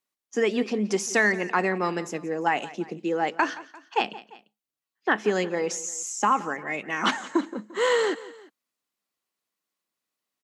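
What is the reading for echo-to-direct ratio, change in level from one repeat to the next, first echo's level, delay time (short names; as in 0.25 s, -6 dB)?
-17.0 dB, -6.0 dB, -18.0 dB, 0.173 s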